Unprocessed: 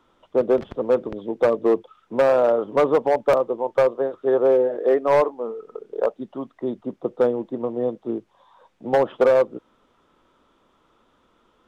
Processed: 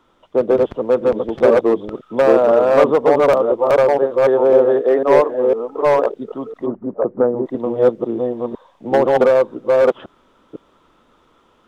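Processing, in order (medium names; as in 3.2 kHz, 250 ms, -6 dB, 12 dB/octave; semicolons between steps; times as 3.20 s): chunks repeated in reverse 503 ms, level -0.5 dB; 6.66–7.46 s: low-pass 1.5 kHz 24 dB/octave; trim +3.5 dB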